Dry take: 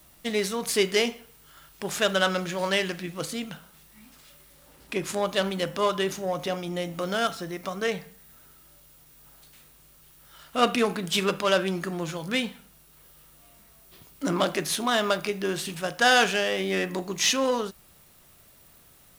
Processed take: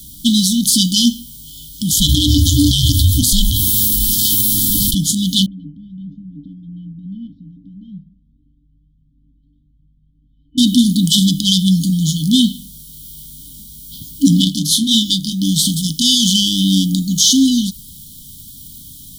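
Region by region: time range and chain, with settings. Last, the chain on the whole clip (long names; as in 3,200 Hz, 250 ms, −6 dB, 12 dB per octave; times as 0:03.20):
0:01.91–0:04.95: parametric band 13,000 Hz +6.5 dB 0.56 octaves + ring modulation 260 Hz + envelope flattener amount 70%
0:05.46–0:10.58: Bessel low-pass filter 960 Hz, order 4 + tuned comb filter 290 Hz, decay 0.16 s, harmonics odd, mix 70% + flanger whose copies keep moving one way rising 1 Hz
0:14.44–0:15.42: high-shelf EQ 6,300 Hz −4.5 dB + double-tracking delay 27 ms −4 dB + expander for the loud parts, over −31 dBFS
whole clip: brick-wall band-stop 310–3,000 Hz; boost into a limiter +20.5 dB; every ending faded ahead of time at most 490 dB per second; level −1 dB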